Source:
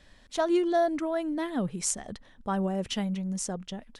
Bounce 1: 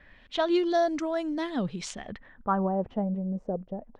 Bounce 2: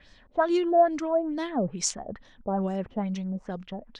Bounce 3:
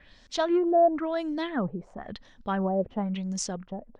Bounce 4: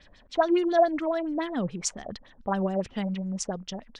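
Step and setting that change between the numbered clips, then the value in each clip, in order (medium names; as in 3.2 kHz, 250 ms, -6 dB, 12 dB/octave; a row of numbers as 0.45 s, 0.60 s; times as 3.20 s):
LFO low-pass, rate: 0.22 Hz, 2.3 Hz, 0.97 Hz, 7.1 Hz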